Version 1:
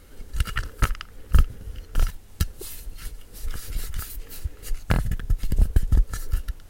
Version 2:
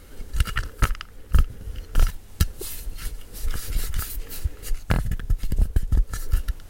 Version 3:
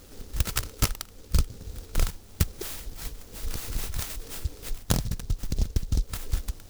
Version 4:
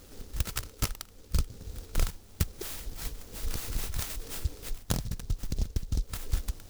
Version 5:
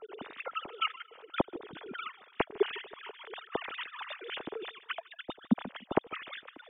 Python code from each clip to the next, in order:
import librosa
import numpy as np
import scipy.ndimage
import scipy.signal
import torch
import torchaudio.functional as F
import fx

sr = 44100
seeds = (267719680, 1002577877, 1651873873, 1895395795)

y1 = fx.rider(x, sr, range_db=3, speed_s=0.5)
y1 = y1 * 10.0 ** (1.0 / 20.0)
y2 = fx.low_shelf(y1, sr, hz=74.0, db=-8.0)
y2 = fx.noise_mod_delay(y2, sr, seeds[0], noise_hz=5000.0, depth_ms=0.16)
y3 = fx.rider(y2, sr, range_db=3, speed_s=0.5)
y3 = y3 * 10.0 ** (-3.5 / 20.0)
y4 = fx.sine_speech(y3, sr)
y4 = fx.harmonic_tremolo(y4, sr, hz=2.0, depth_pct=70, crossover_hz=950.0)
y4 = fx.echo_feedback(y4, sr, ms=152, feedback_pct=40, wet_db=-21.5)
y4 = y4 * 10.0 ** (-2.5 / 20.0)